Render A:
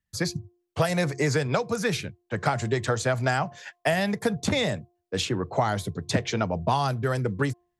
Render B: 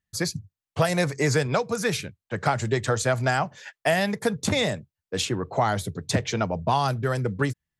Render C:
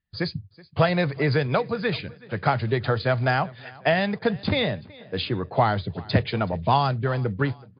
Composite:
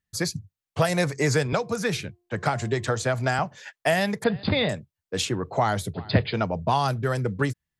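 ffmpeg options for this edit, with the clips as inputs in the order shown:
-filter_complex "[2:a]asplit=2[s0][s1];[1:a]asplit=4[s2][s3][s4][s5];[s2]atrim=end=1.532[s6];[0:a]atrim=start=1.528:end=3.392[s7];[s3]atrim=start=3.388:end=4.242[s8];[s0]atrim=start=4.238:end=4.692[s9];[s4]atrim=start=4.688:end=5.942[s10];[s1]atrim=start=5.938:end=6.342[s11];[s5]atrim=start=6.338[s12];[s6][s7]acrossfade=d=0.004:c1=hsin:c2=hsin[s13];[s13][s8]acrossfade=d=0.004:c1=hsin:c2=hsin[s14];[s14][s9]acrossfade=d=0.004:c1=hsin:c2=hsin[s15];[s15][s10]acrossfade=d=0.004:c1=hsin:c2=hsin[s16];[s16][s11]acrossfade=d=0.004:c1=hsin:c2=hsin[s17];[s17][s12]acrossfade=d=0.004:c1=hsin:c2=hsin"

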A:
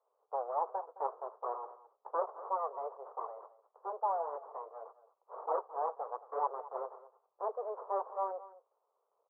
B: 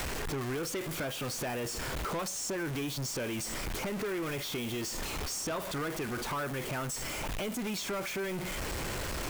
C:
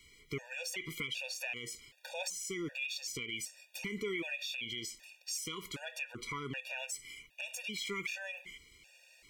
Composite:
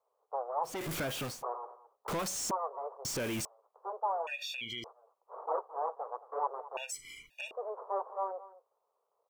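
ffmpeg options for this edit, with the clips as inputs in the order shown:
-filter_complex "[1:a]asplit=3[s0][s1][s2];[2:a]asplit=2[s3][s4];[0:a]asplit=6[s5][s6][s7][s8][s9][s10];[s5]atrim=end=0.86[s11];[s0]atrim=start=0.62:end=1.44[s12];[s6]atrim=start=1.2:end=2.082[s13];[s1]atrim=start=2.078:end=2.512[s14];[s7]atrim=start=2.508:end=3.052[s15];[s2]atrim=start=3.048:end=3.452[s16];[s8]atrim=start=3.448:end=4.272[s17];[s3]atrim=start=4.268:end=4.842[s18];[s9]atrim=start=4.838:end=6.772[s19];[s4]atrim=start=6.768:end=7.512[s20];[s10]atrim=start=7.508[s21];[s11][s12]acrossfade=d=0.24:c1=tri:c2=tri[s22];[s22][s13]acrossfade=d=0.24:c1=tri:c2=tri[s23];[s23][s14]acrossfade=d=0.004:c1=hsin:c2=hsin[s24];[s24][s15]acrossfade=d=0.004:c1=hsin:c2=hsin[s25];[s25][s16]acrossfade=d=0.004:c1=hsin:c2=hsin[s26];[s26][s17]acrossfade=d=0.004:c1=hsin:c2=hsin[s27];[s27][s18]acrossfade=d=0.004:c1=hsin:c2=hsin[s28];[s28][s19]acrossfade=d=0.004:c1=hsin:c2=hsin[s29];[s29][s20]acrossfade=d=0.004:c1=hsin:c2=hsin[s30];[s30][s21]acrossfade=d=0.004:c1=hsin:c2=hsin"

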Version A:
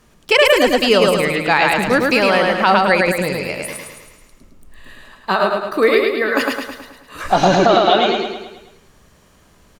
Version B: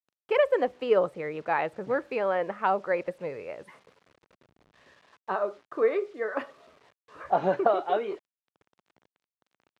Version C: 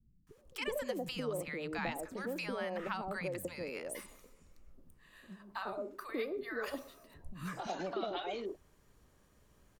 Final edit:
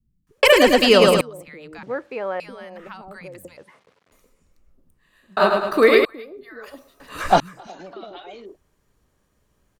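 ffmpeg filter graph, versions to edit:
-filter_complex "[0:a]asplit=3[s0][s1][s2];[1:a]asplit=2[s3][s4];[2:a]asplit=6[s5][s6][s7][s8][s9][s10];[s5]atrim=end=0.432[s11];[s0]atrim=start=0.428:end=1.212[s12];[s6]atrim=start=1.208:end=1.832[s13];[s3]atrim=start=1.828:end=2.402[s14];[s7]atrim=start=2.398:end=3.572[s15];[s4]atrim=start=3.568:end=4.122[s16];[s8]atrim=start=4.118:end=5.372[s17];[s1]atrim=start=5.368:end=6.052[s18];[s9]atrim=start=6.048:end=7.002[s19];[s2]atrim=start=6.998:end=7.402[s20];[s10]atrim=start=7.398[s21];[s11][s12]acrossfade=d=0.004:c1=hsin:c2=hsin[s22];[s22][s13]acrossfade=d=0.004:c1=hsin:c2=hsin[s23];[s23][s14]acrossfade=d=0.004:c1=hsin:c2=hsin[s24];[s24][s15]acrossfade=d=0.004:c1=hsin:c2=hsin[s25];[s25][s16]acrossfade=d=0.004:c1=hsin:c2=hsin[s26];[s26][s17]acrossfade=d=0.004:c1=hsin:c2=hsin[s27];[s27][s18]acrossfade=d=0.004:c1=hsin:c2=hsin[s28];[s28][s19]acrossfade=d=0.004:c1=hsin:c2=hsin[s29];[s29][s20]acrossfade=d=0.004:c1=hsin:c2=hsin[s30];[s30][s21]acrossfade=d=0.004:c1=hsin:c2=hsin"

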